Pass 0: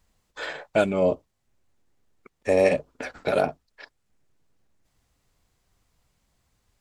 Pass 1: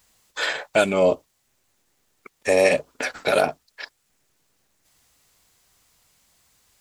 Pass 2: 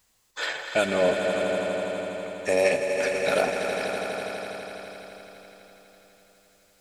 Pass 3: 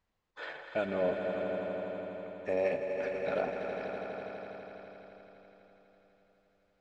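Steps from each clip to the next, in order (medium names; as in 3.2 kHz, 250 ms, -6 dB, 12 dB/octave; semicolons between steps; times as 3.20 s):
tilt EQ +2.5 dB/octave; in parallel at +1.5 dB: peak limiter -17.5 dBFS, peak gain reduction 9.5 dB
backward echo that repeats 292 ms, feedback 67%, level -13.5 dB; echo with a slow build-up 82 ms, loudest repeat 5, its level -10 dB; trim -5 dB
tape spacing loss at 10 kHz 34 dB; trim -6.5 dB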